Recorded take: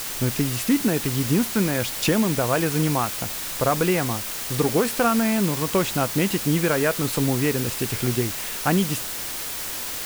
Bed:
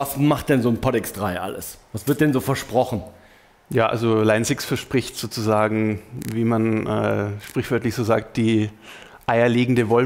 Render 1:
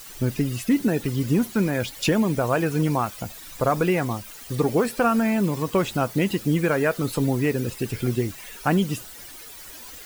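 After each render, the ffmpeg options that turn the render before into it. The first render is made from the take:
ffmpeg -i in.wav -af "afftdn=noise_reduction=14:noise_floor=-31" out.wav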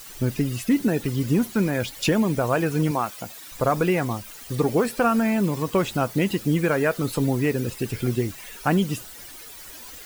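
ffmpeg -i in.wav -filter_complex "[0:a]asettb=1/sr,asplit=3[link_01][link_02][link_03];[link_01]atrim=end=2.914[link_04];[link_02]atrim=start=2.91:end=3.52,asetpts=PTS-STARTPTS,afade=type=in:duration=0.004:curve=qsin,afade=type=out:start_time=0.606:duration=0.004:curve=qsin,highpass=frequency=250:poles=1[link_05];[link_03]atrim=start=3.516[link_06];[link_04][link_05]acrossfade=duration=0.004:curve1=hsin:curve2=qsin[link_07];[link_07][link_06]acrossfade=duration=0.004:curve1=qsin:curve2=hsin" out.wav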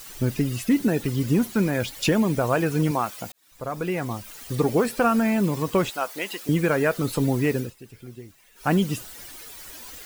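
ffmpeg -i in.wav -filter_complex "[0:a]asettb=1/sr,asplit=3[link_01][link_02][link_03];[link_01]atrim=end=5.904[link_04];[link_02]atrim=start=5.9:end=6.49,asetpts=PTS-STARTPTS,afade=type=in:duration=0.004:curve=qsin,afade=type=out:start_time=0.586:duration=0.004:curve=qsin,highpass=650[link_05];[link_03]atrim=start=6.486[link_06];[link_04][link_05]acrossfade=duration=0.004:curve1=hsin:curve2=qsin[link_07];[link_07][link_06]acrossfade=duration=0.004:curve1=qsin:curve2=hsin,asplit=4[link_08][link_09][link_10][link_11];[link_08]atrim=end=3.32,asetpts=PTS-STARTPTS,afade=type=out:start_time=3.316:duration=0.004:curve=hsin[link_12];[link_09]atrim=start=3.32:end=7.73,asetpts=PTS-STARTPTS,afade=type=in:duration=1.09,afade=type=out:start_time=4.25:duration=0.16:silence=0.141254[link_13];[link_10]atrim=start=7.73:end=8.55,asetpts=PTS-STARTPTS,volume=-17dB[link_14];[link_11]atrim=start=8.55,asetpts=PTS-STARTPTS,afade=type=in:duration=0.16:silence=0.141254[link_15];[link_12][link_13][link_14][link_15]concat=n=4:v=0:a=1" out.wav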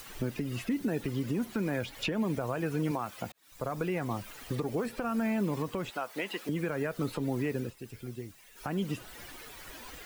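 ffmpeg -i in.wav -filter_complex "[0:a]acrossover=split=200|3300[link_01][link_02][link_03];[link_01]acompressor=threshold=-36dB:ratio=4[link_04];[link_02]acompressor=threshold=-27dB:ratio=4[link_05];[link_03]acompressor=threshold=-51dB:ratio=4[link_06];[link_04][link_05][link_06]amix=inputs=3:normalize=0,alimiter=limit=-22dB:level=0:latency=1:release=215" out.wav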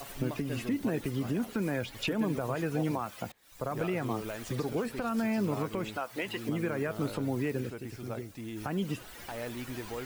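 ffmpeg -i in.wav -i bed.wav -filter_complex "[1:a]volume=-22dB[link_01];[0:a][link_01]amix=inputs=2:normalize=0" out.wav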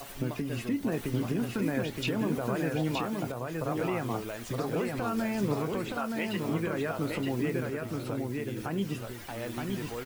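ffmpeg -i in.wav -filter_complex "[0:a]asplit=2[link_01][link_02];[link_02]adelay=25,volume=-12.5dB[link_03];[link_01][link_03]amix=inputs=2:normalize=0,aecho=1:1:921:0.668" out.wav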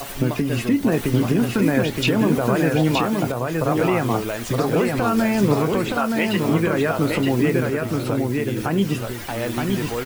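ffmpeg -i in.wav -af "volume=11.5dB" out.wav

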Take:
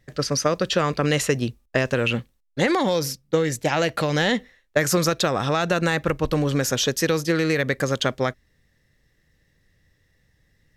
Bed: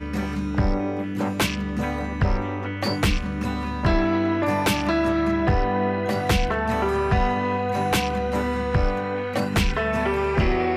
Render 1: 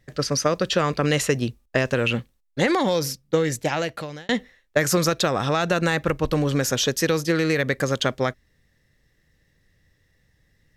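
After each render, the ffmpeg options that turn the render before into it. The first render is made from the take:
ffmpeg -i in.wav -filter_complex "[0:a]asplit=2[link_01][link_02];[link_01]atrim=end=4.29,asetpts=PTS-STARTPTS,afade=type=out:start_time=3.55:duration=0.74[link_03];[link_02]atrim=start=4.29,asetpts=PTS-STARTPTS,afade=type=in:duration=0.004:curve=hsin[link_04];[link_03][link_04]concat=n=2:v=0:a=1" out.wav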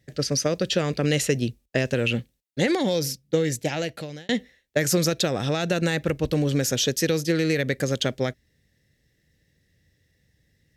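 ffmpeg -i in.wav -af "highpass=56,equalizer=frequency=1100:width=1.5:gain=-12.5" out.wav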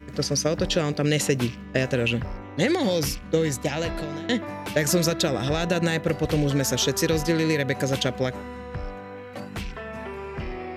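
ffmpeg -i in.wav -i bed.wav -filter_complex "[1:a]volume=-12dB[link_01];[0:a][link_01]amix=inputs=2:normalize=0" out.wav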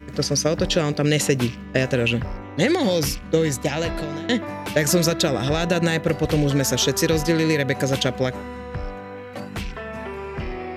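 ffmpeg -i in.wav -af "volume=3dB" out.wav

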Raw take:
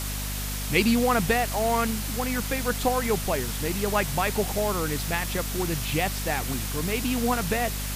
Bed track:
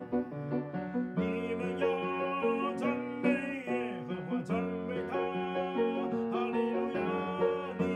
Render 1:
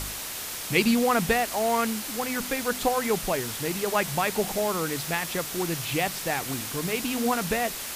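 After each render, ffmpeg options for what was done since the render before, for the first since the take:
ffmpeg -i in.wav -af "bandreject=frequency=50:width_type=h:width=4,bandreject=frequency=100:width_type=h:width=4,bandreject=frequency=150:width_type=h:width=4,bandreject=frequency=200:width_type=h:width=4,bandreject=frequency=250:width_type=h:width=4" out.wav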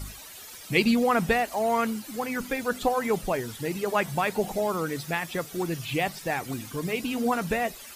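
ffmpeg -i in.wav -af "afftdn=noise_reduction=14:noise_floor=-35" out.wav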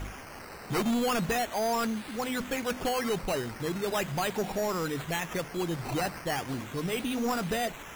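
ffmpeg -i in.wav -af "acrusher=samples=10:mix=1:aa=0.000001:lfo=1:lforange=6:lforate=0.38,asoftclip=type=tanh:threshold=-24dB" out.wav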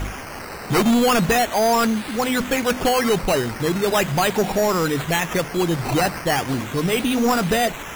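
ffmpeg -i in.wav -af "volume=11dB" out.wav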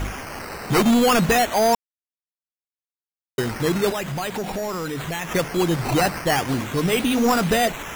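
ffmpeg -i in.wav -filter_complex "[0:a]asettb=1/sr,asplit=3[link_01][link_02][link_03];[link_01]atrim=end=3.904[link_04];[link_02]atrim=start=3.9:end=5.35,asetpts=PTS-STARTPTS,afade=type=in:duration=0.004:curve=qsin,afade=type=out:start_time=1.446:duration=0.004:curve=qsin,acompressor=threshold=-25dB:ratio=5:attack=3.2:release=140:knee=1:detection=peak[link_05];[link_03]atrim=start=5.346[link_06];[link_04][link_05]acrossfade=duration=0.004:curve1=hsin:curve2=qsin[link_07];[link_07][link_06]acrossfade=duration=0.004:curve1=qsin:curve2=hsin,asplit=3[link_08][link_09][link_10];[link_08]atrim=end=1.75,asetpts=PTS-STARTPTS,afade=type=out:start_time=1.746:duration=0.004:curve=hsin[link_11];[link_09]atrim=start=1.75:end=3.38,asetpts=PTS-STARTPTS,volume=0[link_12];[link_10]atrim=start=3.38,asetpts=PTS-STARTPTS,afade=type=in:duration=0.004:curve=hsin[link_13];[link_11][link_12][link_13]concat=n=3:v=0:a=1" out.wav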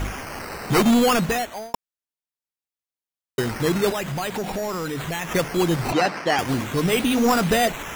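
ffmpeg -i in.wav -filter_complex "[0:a]asettb=1/sr,asplit=3[link_01][link_02][link_03];[link_01]atrim=end=5.924[link_04];[link_02]atrim=start=5.92:end=6.39,asetpts=PTS-STARTPTS,afade=type=in:duration=0.004:curve=qsin,afade=type=out:start_time=0.466:duration=0.004:curve=qsin,acrossover=split=180 6300:gain=0.0708 1 0.1[link_05][link_06][link_07];[link_05][link_06][link_07]amix=inputs=3:normalize=0[link_08];[link_03]atrim=start=6.386[link_09];[link_04][link_08]acrossfade=duration=0.004:curve1=hsin:curve2=qsin[link_10];[link_10][link_09]acrossfade=duration=0.004:curve1=qsin:curve2=hsin,asplit=2[link_11][link_12];[link_11]atrim=end=1.74,asetpts=PTS-STARTPTS,afade=type=out:start_time=0.99:duration=0.75[link_13];[link_12]atrim=start=1.74,asetpts=PTS-STARTPTS,afade=type=in:duration=0.004:curve=hsin[link_14];[link_13][link_14]concat=n=2:v=0:a=1" out.wav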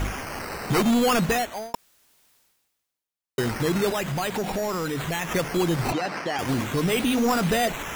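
ffmpeg -i in.wav -af "alimiter=limit=-17dB:level=0:latency=1:release=56,areverse,acompressor=mode=upward:threshold=-36dB:ratio=2.5,areverse" out.wav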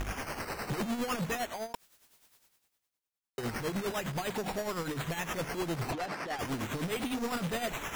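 ffmpeg -i in.wav -af "asoftclip=type=tanh:threshold=-29.5dB,tremolo=f=9.8:d=0.62" out.wav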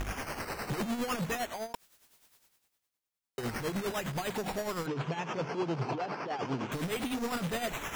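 ffmpeg -i in.wav -filter_complex "[0:a]asettb=1/sr,asplit=3[link_01][link_02][link_03];[link_01]atrim=end=4.864[link_04];[link_02]atrim=start=4.86:end=6.72,asetpts=PTS-STARTPTS,afade=type=in:duration=0.004:curve=qsin,afade=type=out:start_time=1.856:duration=0.004:curve=qsin,highpass=frequency=130:width=0.5412,highpass=frequency=130:width=1.3066,equalizer=frequency=130:width_type=q:width=4:gain=6,equalizer=frequency=420:width_type=q:width=4:gain=5,equalizer=frequency=910:width_type=q:width=4:gain=4,equalizer=frequency=1900:width_type=q:width=4:gain=-7,equalizer=frequency=3800:width_type=q:width=4:gain=-8,lowpass=frequency=5200:width=0.5412,lowpass=frequency=5200:width=1.3066[link_05];[link_03]atrim=start=6.716[link_06];[link_04][link_05]acrossfade=duration=0.004:curve1=hsin:curve2=qsin[link_07];[link_07][link_06]acrossfade=duration=0.004:curve1=qsin:curve2=hsin" out.wav

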